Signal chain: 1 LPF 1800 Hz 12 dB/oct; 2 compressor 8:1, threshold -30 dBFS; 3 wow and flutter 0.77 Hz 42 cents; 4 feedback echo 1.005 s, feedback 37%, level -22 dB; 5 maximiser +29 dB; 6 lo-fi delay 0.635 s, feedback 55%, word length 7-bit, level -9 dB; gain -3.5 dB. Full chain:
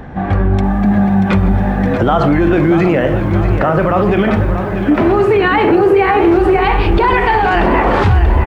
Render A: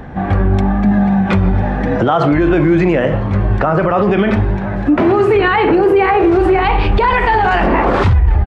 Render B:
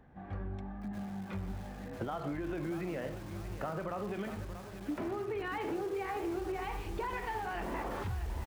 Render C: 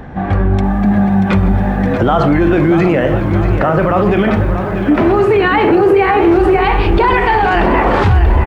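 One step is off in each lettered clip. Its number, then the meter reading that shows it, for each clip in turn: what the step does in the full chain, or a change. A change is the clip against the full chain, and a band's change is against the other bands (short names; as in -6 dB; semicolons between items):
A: 6, crest factor change -2.5 dB; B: 5, crest factor change +2.5 dB; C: 2, mean gain reduction 2.5 dB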